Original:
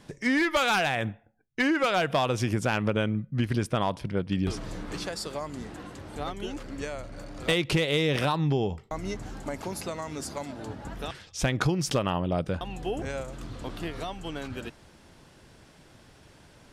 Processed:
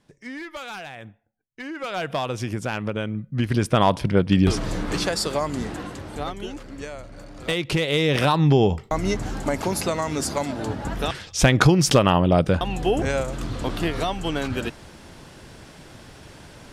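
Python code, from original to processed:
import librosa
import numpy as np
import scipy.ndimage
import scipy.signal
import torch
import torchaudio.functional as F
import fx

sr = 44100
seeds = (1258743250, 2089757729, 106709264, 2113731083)

y = fx.gain(x, sr, db=fx.line((1.62, -11.0), (2.06, -1.0), (3.08, -1.0), (3.89, 10.0), (5.68, 10.0), (6.65, 0.0), (7.52, 0.0), (8.65, 10.0)))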